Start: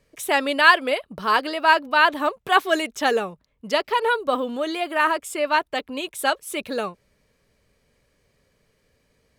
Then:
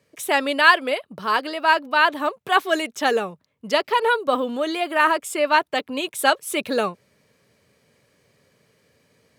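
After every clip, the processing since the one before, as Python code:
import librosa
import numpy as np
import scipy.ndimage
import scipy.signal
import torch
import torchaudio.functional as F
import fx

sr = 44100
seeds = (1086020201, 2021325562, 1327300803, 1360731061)

y = scipy.signal.sosfilt(scipy.signal.butter(4, 96.0, 'highpass', fs=sr, output='sos'), x)
y = fx.rider(y, sr, range_db=5, speed_s=2.0)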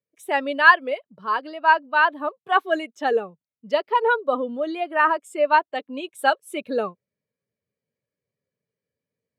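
y = fx.spectral_expand(x, sr, expansion=1.5)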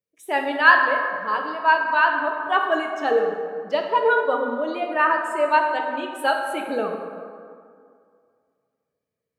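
y = fx.rev_plate(x, sr, seeds[0], rt60_s=2.2, hf_ratio=0.5, predelay_ms=0, drr_db=2.0)
y = y * librosa.db_to_amplitude(-1.5)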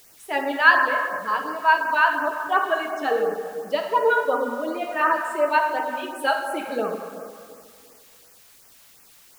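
y = fx.dmg_noise_colour(x, sr, seeds[1], colour='white', level_db=-52.0)
y = fx.filter_lfo_notch(y, sr, shape='sine', hz=2.8, low_hz=290.0, high_hz=3800.0, q=1.6)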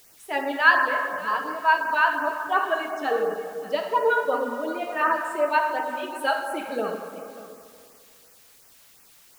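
y = x + 10.0 ** (-16.5 / 20.0) * np.pad(x, (int(589 * sr / 1000.0), 0))[:len(x)]
y = y * librosa.db_to_amplitude(-2.0)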